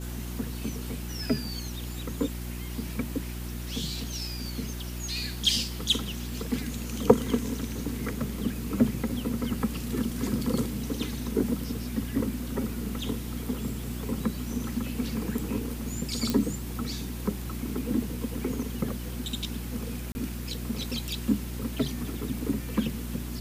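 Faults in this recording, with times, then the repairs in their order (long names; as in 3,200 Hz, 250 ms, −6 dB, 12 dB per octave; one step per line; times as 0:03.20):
mains hum 60 Hz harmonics 6 −36 dBFS
0:16.30: click
0:20.12–0:20.15: drop-out 30 ms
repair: click removal
hum removal 60 Hz, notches 6
repair the gap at 0:20.12, 30 ms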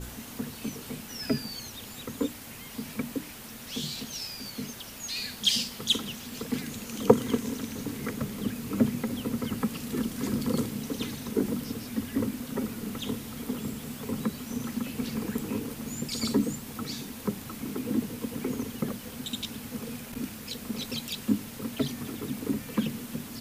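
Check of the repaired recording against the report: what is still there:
none of them is left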